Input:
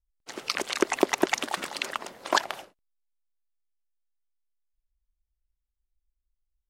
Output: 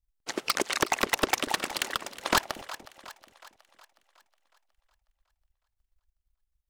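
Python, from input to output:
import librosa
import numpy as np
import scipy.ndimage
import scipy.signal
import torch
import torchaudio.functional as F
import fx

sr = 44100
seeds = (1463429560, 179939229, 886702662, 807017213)

y = fx.transient(x, sr, attack_db=7, sustain_db=-7)
y = 10.0 ** (-13.0 / 20.0) * (np.abs((y / 10.0 ** (-13.0 / 20.0) + 3.0) % 4.0 - 2.0) - 1.0)
y = fx.echo_split(y, sr, split_hz=550.0, low_ms=236, high_ms=366, feedback_pct=52, wet_db=-15.5)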